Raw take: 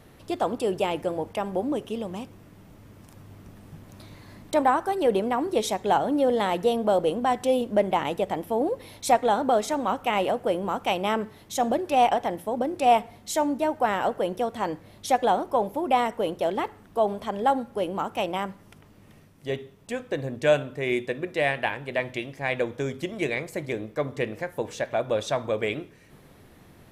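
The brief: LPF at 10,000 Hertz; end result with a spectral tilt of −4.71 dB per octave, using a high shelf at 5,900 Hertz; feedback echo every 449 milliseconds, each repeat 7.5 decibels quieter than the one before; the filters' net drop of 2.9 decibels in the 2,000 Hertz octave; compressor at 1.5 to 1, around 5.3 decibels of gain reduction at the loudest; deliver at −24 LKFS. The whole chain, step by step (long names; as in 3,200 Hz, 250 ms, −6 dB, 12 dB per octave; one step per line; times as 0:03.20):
low-pass filter 10,000 Hz
parametric band 2,000 Hz −4 dB
high-shelf EQ 5,900 Hz +4 dB
downward compressor 1.5 to 1, threshold −30 dBFS
repeating echo 449 ms, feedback 42%, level −7.5 dB
level +5.5 dB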